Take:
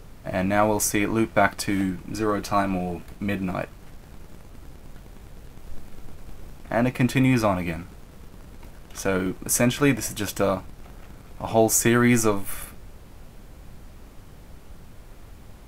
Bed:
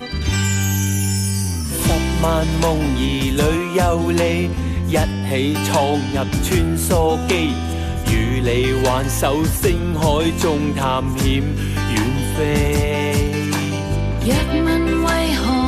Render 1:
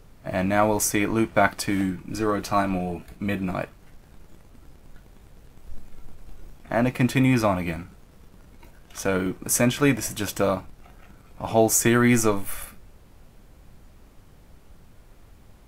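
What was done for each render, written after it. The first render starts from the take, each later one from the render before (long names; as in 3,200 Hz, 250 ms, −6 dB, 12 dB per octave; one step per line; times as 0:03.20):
noise reduction from a noise print 6 dB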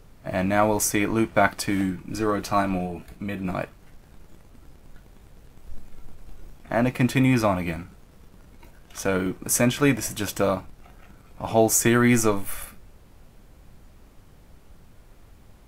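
0:02.86–0:03.45: downward compressor 2 to 1, threshold −29 dBFS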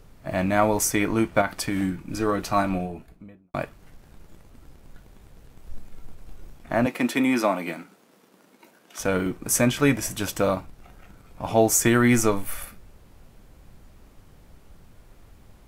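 0:01.41–0:01.82: downward compressor 4 to 1, threshold −21 dBFS
0:02.65–0:03.54: fade out and dull
0:06.86–0:08.99: high-pass filter 220 Hz 24 dB per octave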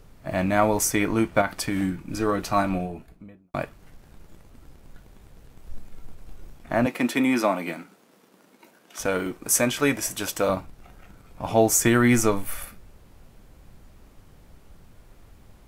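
0:09.06–0:10.49: bass and treble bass −8 dB, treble +2 dB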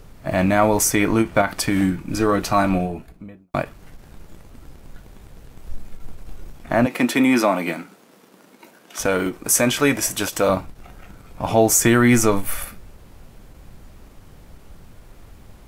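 in parallel at +1 dB: brickwall limiter −15.5 dBFS, peak gain reduction 10 dB
on the sum: every ending faded ahead of time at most 300 dB per second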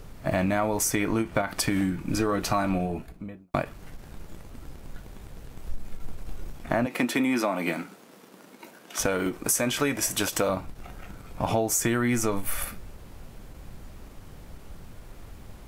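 downward compressor 6 to 1, threshold −22 dBFS, peak gain reduction 11.5 dB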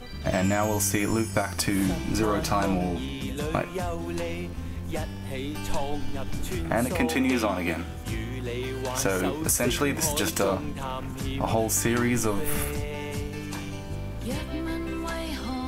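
mix in bed −14.5 dB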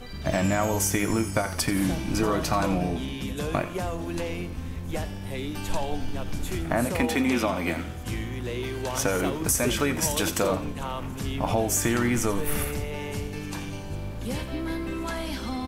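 echo with shifted repeats 86 ms, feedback 37%, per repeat −41 Hz, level −14 dB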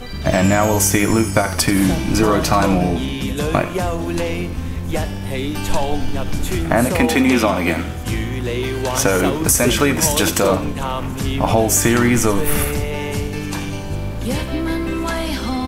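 level +9.5 dB
brickwall limiter −2 dBFS, peak gain reduction 3 dB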